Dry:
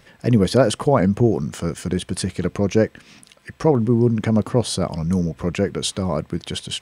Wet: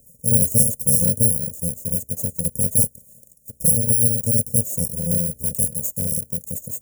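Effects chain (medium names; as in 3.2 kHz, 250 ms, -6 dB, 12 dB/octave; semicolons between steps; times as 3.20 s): bit-reversed sample order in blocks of 128 samples; Chebyshev band-stop 590–6800 Hz, order 4; 5.25–6.49 s: short-mantissa float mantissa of 4-bit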